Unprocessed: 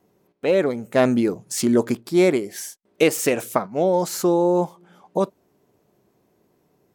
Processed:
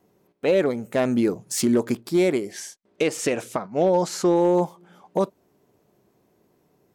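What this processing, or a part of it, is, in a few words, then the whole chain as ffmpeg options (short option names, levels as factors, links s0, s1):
limiter into clipper: -filter_complex "[0:a]alimiter=limit=0.282:level=0:latency=1:release=205,asoftclip=type=hard:threshold=0.237,asettb=1/sr,asplit=3[s0][s1][s2];[s0]atrim=end=2.514[s3];[s1]atrim=start=2.51:end=4.36,asetpts=PTS-STARTPTS,afade=t=in:d=0.004:c=qsin,afade=t=out:st=1.846:d=0.004:c=qsin,lowpass=7500[s4];[s2]atrim=start=4.356[s5];[s3][s4]acrossfade=d=0.004:c1=hsin:c2=qsin[s6];[s6][s5]acrossfade=d=0.004:c1=qsin:c2=hsin"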